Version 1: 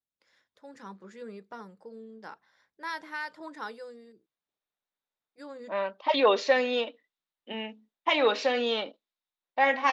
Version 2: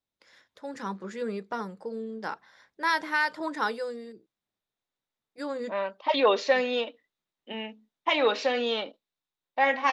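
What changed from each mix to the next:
first voice +10.0 dB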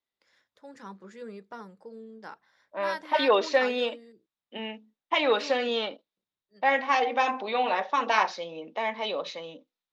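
first voice -9.0 dB; second voice: entry -2.95 s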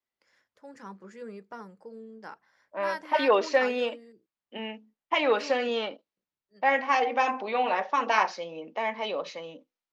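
master: add bell 3700 Hz -9.5 dB 0.27 oct

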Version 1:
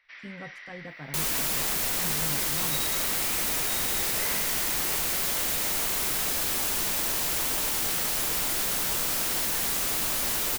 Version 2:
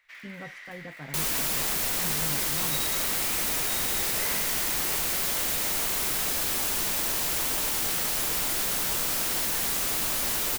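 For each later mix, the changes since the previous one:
first sound: remove brick-wall FIR low-pass 6000 Hz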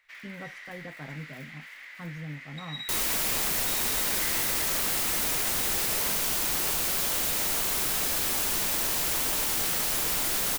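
second sound: entry +1.75 s

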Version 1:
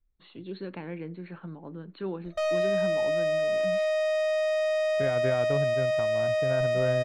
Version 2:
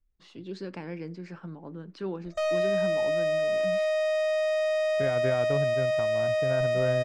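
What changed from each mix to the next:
first voice: remove brick-wall FIR low-pass 4400 Hz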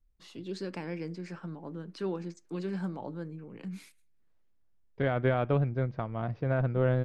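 second voice +3.5 dB; background: muted; master: remove air absorption 73 m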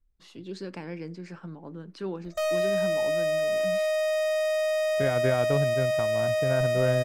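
background: unmuted

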